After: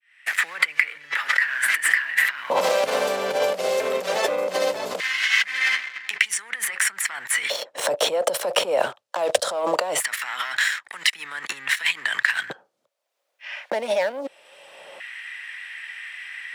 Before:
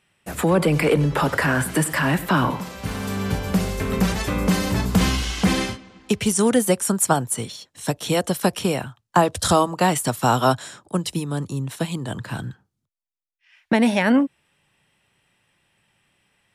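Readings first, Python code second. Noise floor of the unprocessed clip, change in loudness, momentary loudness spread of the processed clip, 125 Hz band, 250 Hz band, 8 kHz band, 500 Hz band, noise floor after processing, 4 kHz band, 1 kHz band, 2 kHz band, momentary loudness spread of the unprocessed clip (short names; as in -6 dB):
-78 dBFS, -1.0 dB, 15 LU, under -25 dB, -21.0 dB, -1.5 dB, -0.5 dB, -72 dBFS, +3.0 dB, -5.0 dB, +6.5 dB, 11 LU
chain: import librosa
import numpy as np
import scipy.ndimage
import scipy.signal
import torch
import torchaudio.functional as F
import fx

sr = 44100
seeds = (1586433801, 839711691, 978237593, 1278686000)

y = fx.fade_in_head(x, sr, length_s=1.28)
y = fx.lowpass(y, sr, hz=3100.0, slope=6)
y = fx.leveller(y, sr, passes=2)
y = fx.over_compress(y, sr, threshold_db=-25.0, ratio=-1.0)
y = fx.filter_lfo_highpass(y, sr, shape='square', hz=0.2, low_hz=560.0, high_hz=1900.0, q=5.5)
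y = fx.band_squash(y, sr, depth_pct=70)
y = y * 10.0 ** (-1.0 / 20.0)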